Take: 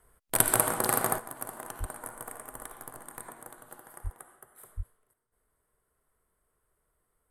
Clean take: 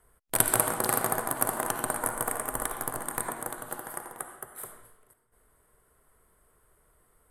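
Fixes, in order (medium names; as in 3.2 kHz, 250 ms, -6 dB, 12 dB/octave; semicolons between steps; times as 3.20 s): de-plosive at 1.79/4.03/4.76 s; trim 0 dB, from 1.18 s +11.5 dB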